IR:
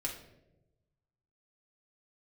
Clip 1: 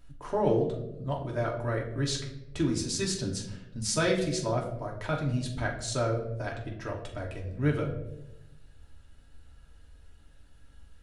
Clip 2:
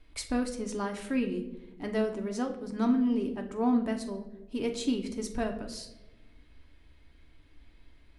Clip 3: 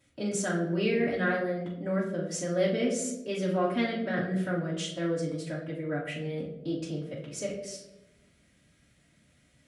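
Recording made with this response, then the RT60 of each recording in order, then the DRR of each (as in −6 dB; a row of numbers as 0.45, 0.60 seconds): 1; 0.95, 1.0, 0.95 seconds; −2.0, 3.0, −9.5 decibels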